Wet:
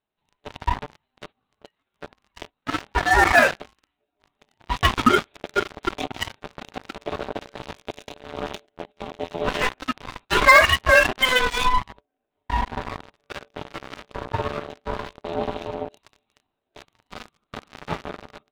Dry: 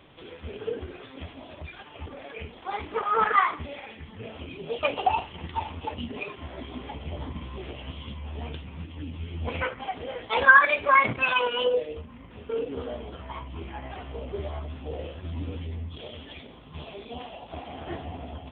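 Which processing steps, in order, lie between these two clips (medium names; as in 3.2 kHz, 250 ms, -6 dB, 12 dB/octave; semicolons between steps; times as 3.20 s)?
Chebyshev shaper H 3 -7 dB, 5 -16 dB, 7 -40 dB, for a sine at -3.5 dBFS; in parallel at +2 dB: gain riding within 4 dB 2 s; on the sum: waveshaping leveller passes 5; gate -32 dBFS, range -14 dB; ring modulator 510 Hz; trim -7 dB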